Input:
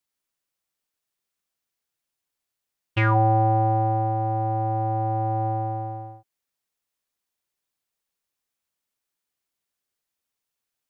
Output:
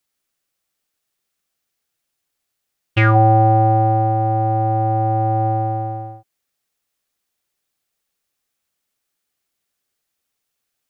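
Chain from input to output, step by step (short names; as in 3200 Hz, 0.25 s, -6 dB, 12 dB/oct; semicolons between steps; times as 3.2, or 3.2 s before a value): notch 970 Hz, Q 10; gain +7 dB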